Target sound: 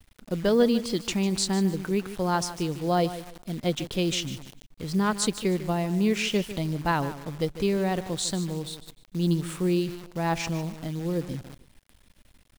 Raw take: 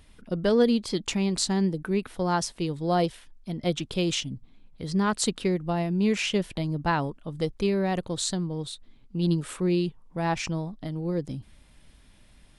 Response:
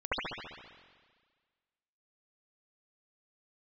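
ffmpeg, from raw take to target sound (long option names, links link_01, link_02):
-af "aecho=1:1:150|300|450:0.211|0.0613|0.0178,acrusher=bits=8:dc=4:mix=0:aa=0.000001"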